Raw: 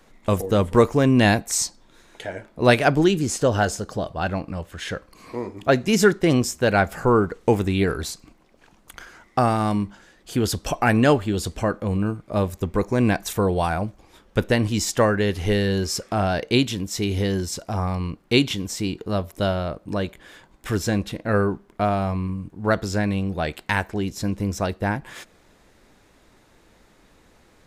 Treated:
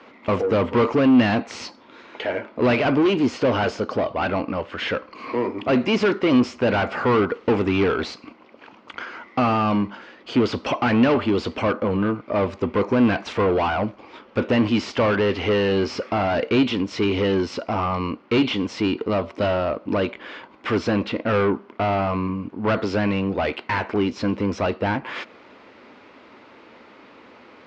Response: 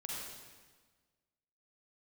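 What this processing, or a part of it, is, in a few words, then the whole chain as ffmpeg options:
overdrive pedal into a guitar cabinet: -filter_complex "[0:a]asplit=2[a][b];[b]highpass=f=720:p=1,volume=30dB,asoftclip=type=tanh:threshold=-2dB[c];[a][c]amix=inputs=2:normalize=0,lowpass=f=2.8k:p=1,volume=-6dB,highpass=81,equalizer=f=160:t=q:w=4:g=-7,equalizer=f=250:t=q:w=4:g=6,equalizer=f=740:t=q:w=4:g=-5,equalizer=f=1.7k:t=q:w=4:g=-7,equalizer=f=3.7k:t=q:w=4:g=-7,lowpass=f=4.2k:w=0.5412,lowpass=f=4.2k:w=1.3066,volume=-8dB"

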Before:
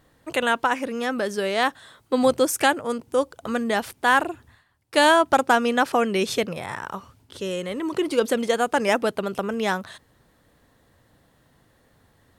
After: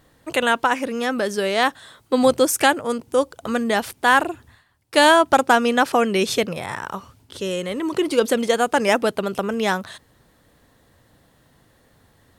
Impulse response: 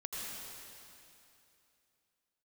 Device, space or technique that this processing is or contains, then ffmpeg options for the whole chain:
exciter from parts: -filter_complex "[0:a]asplit=2[a][b];[b]highpass=2.1k,asoftclip=type=tanh:threshold=-23dB,volume=-13dB[c];[a][c]amix=inputs=2:normalize=0,volume=3dB"

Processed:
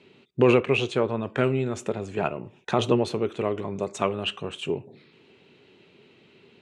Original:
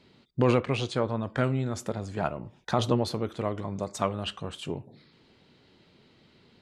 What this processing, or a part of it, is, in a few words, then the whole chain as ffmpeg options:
car door speaker: -af "highpass=110,equalizer=f=400:t=q:w=4:g=9,equalizer=f=2.6k:t=q:w=4:g=10,equalizer=f=4.8k:t=q:w=4:g=-8,lowpass=f=9.5k:w=0.5412,lowpass=f=9.5k:w=1.3066,volume=1.5dB"

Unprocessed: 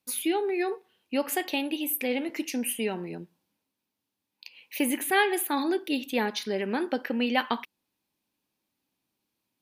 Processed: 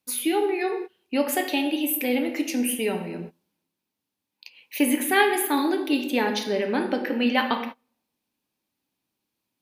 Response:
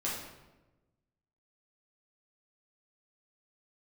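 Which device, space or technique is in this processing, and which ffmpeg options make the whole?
keyed gated reverb: -filter_complex "[0:a]asplit=3[a][b][c];[1:a]atrim=start_sample=2205[d];[b][d]afir=irnorm=-1:irlink=0[e];[c]apad=whole_len=423876[f];[e][f]sidechaingate=range=-30dB:threshold=-45dB:ratio=16:detection=peak,volume=-6dB[g];[a][g]amix=inputs=2:normalize=0"

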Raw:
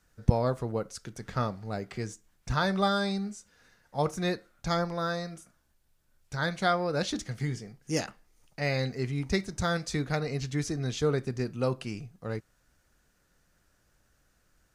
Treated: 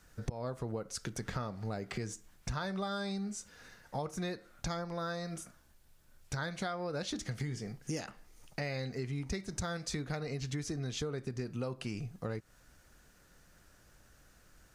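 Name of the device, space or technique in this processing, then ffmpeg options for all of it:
serial compression, peaks first: -af "acompressor=threshold=-37dB:ratio=4,acompressor=threshold=-44dB:ratio=2,volume=6.5dB"

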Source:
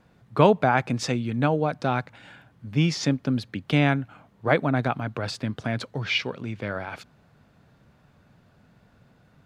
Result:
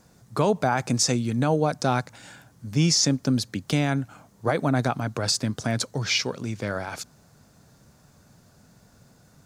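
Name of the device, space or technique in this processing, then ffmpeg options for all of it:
over-bright horn tweeter: -af "highshelf=f=4.3k:t=q:w=1.5:g=13,alimiter=limit=-13.5dB:level=0:latency=1:release=49,volume=2dB"

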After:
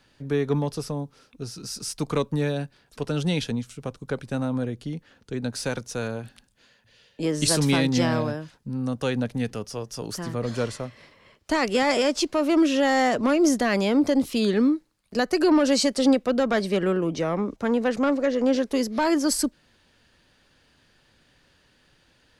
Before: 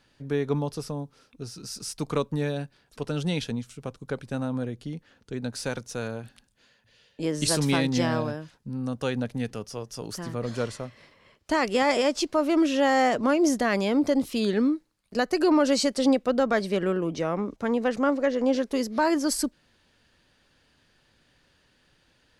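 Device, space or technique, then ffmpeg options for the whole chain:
one-band saturation: -filter_complex "[0:a]acrossover=split=360|2000[a][b][c];[b]asoftclip=type=tanh:threshold=-22.5dB[d];[a][d][c]amix=inputs=3:normalize=0,volume=3dB"

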